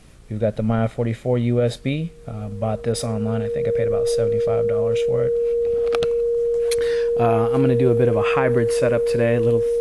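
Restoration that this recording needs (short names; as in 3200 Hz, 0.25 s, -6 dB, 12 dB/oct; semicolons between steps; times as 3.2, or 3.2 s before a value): de-hum 59 Hz, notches 9; notch 470 Hz, Q 30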